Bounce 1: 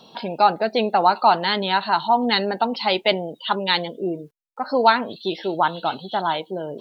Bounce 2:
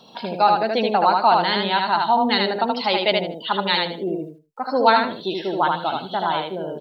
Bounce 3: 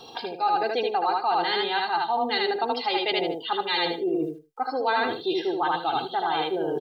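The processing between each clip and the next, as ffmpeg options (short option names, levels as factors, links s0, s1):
-af "aecho=1:1:77|154|231:0.708|0.163|0.0375,volume=0.891"
-af "aecho=1:1:2.5:0.84,areverse,acompressor=threshold=0.0447:ratio=4,areverse,volume=1.41"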